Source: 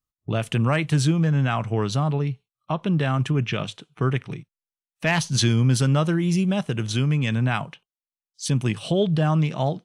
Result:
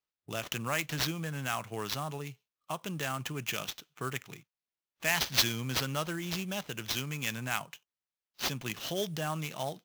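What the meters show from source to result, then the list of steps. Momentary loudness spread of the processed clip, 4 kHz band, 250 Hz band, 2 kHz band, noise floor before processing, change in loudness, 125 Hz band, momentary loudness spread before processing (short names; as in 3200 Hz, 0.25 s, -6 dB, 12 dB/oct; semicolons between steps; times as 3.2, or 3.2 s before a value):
11 LU, -2.5 dB, -16.0 dB, -5.0 dB, under -85 dBFS, -11.0 dB, -18.5 dB, 9 LU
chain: band-pass 7900 Hz, Q 0.59; tilt -2.5 dB/oct; sample-rate reducer 9400 Hz, jitter 20%; gain +6 dB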